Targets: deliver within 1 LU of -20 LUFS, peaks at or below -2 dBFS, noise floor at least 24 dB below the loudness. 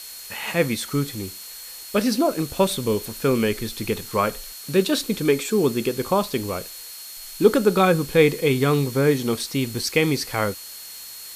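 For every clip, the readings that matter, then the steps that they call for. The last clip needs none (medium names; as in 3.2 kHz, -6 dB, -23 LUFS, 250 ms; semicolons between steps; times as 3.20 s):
steady tone 4.3 kHz; tone level -42 dBFS; noise floor -39 dBFS; noise floor target -46 dBFS; loudness -22.0 LUFS; peak level -3.0 dBFS; loudness target -20.0 LUFS
-> band-stop 4.3 kHz, Q 30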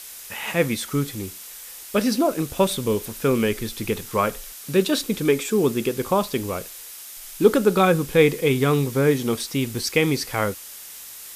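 steady tone not found; noise floor -40 dBFS; noise floor target -46 dBFS
-> noise reduction 6 dB, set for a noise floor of -40 dBFS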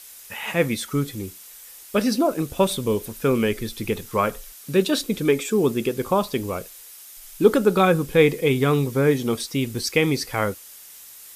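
noise floor -44 dBFS; noise floor target -46 dBFS
-> noise reduction 6 dB, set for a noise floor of -44 dBFS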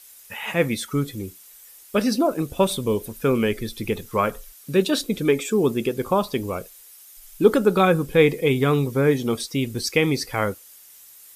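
noise floor -48 dBFS; loudness -22.5 LUFS; peak level -3.0 dBFS; loudness target -20.0 LUFS
-> trim +2.5 dB; peak limiter -2 dBFS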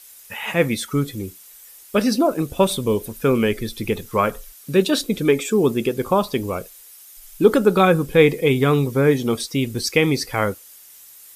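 loudness -20.0 LUFS; peak level -2.0 dBFS; noise floor -45 dBFS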